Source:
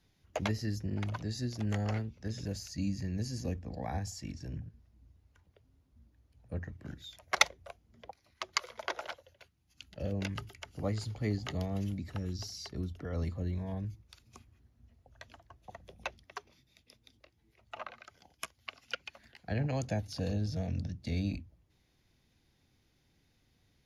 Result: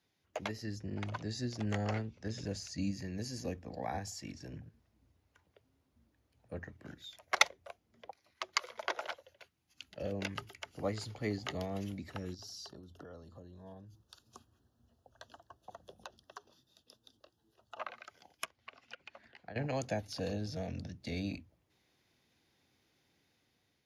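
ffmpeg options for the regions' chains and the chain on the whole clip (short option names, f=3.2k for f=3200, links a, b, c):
-filter_complex "[0:a]asettb=1/sr,asplit=3[a][b][c];[a]atrim=end=0.634[d];[b]atrim=start=0.63:end=2.91,asetpts=PTS-STARTPTS,afade=t=in:d=0.004:c=qsin,afade=t=out:st=2.276:d=0.004:c=qsin,lowpass=f=9.7k:w=0.5412,lowpass=f=9.7k:w=1.3066,lowshelf=f=180:g=5.5[e];[c]atrim=start=2.906[f];[d][e]acrossfade=d=0.004:c1=hsin:c2=qsin[g];[g][f]acrossfade=d=0.004:c1=qsin:c2=hsin,asettb=1/sr,asplit=3[h][i][j];[h]atrim=end=12.344[k];[i]atrim=start=12.34:end=17.8,asetpts=PTS-STARTPTS,afade=t=in:d=0.004:c=qsin,afade=t=out:st=5.456:d=0.004:c=qsin,asuperstop=centerf=2200:order=4:qfactor=1.8,acompressor=threshold=-43dB:ratio=16:attack=3.2:release=140:knee=1:detection=peak[l];[j]atrim=start=17.796[m];[k][l]acrossfade=d=0.004:c1=hsin:c2=qsin[n];[n][m]acrossfade=d=0.004:c1=qsin:c2=hsin,asettb=1/sr,asplit=3[o][p][q];[o]atrim=end=18.444[r];[p]atrim=start=18.44:end=19.56,asetpts=PTS-STARTPTS,afade=t=in:d=0.004:c=qsin,afade=t=out:st=1.116:d=0.004:c=qsin,acompressor=threshold=-42dB:ratio=10:attack=3.2:release=140:knee=1:detection=peak,aemphasis=mode=reproduction:type=75fm[s];[q]atrim=start=19.556[t];[r][s]acrossfade=d=0.004:c1=hsin:c2=qsin[u];[u][t]acrossfade=d=0.004:c1=qsin:c2=hsin,highpass=83,bass=f=250:g=-8,treble=f=4k:g=-2,dynaudnorm=f=390:g=5:m=5.5dB,volume=-4dB"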